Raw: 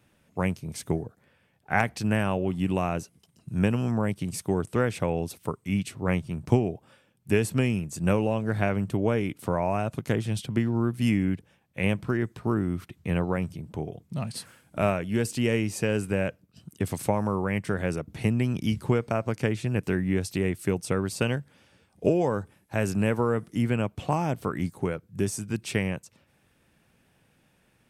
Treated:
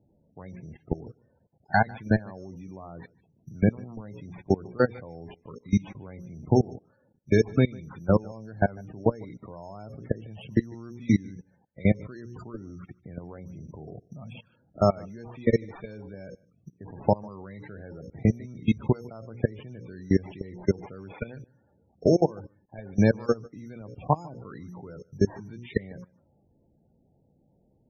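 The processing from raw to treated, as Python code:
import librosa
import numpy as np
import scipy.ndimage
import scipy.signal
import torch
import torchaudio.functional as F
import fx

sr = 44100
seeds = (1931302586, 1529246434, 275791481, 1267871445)

p1 = fx.freq_compress(x, sr, knee_hz=1900.0, ratio=1.5)
p2 = fx.hum_notches(p1, sr, base_hz=60, count=9)
p3 = fx.env_lowpass(p2, sr, base_hz=680.0, full_db=-23.5)
p4 = fx.level_steps(p3, sr, step_db=24)
p5 = fx.sample_hold(p4, sr, seeds[0], rate_hz=5900.0, jitter_pct=0)
p6 = fx.spec_topn(p5, sr, count=32)
p7 = p6 + fx.echo_single(p6, sr, ms=149, db=-24.0, dry=0)
y = F.gain(torch.from_numpy(p7), 6.5).numpy()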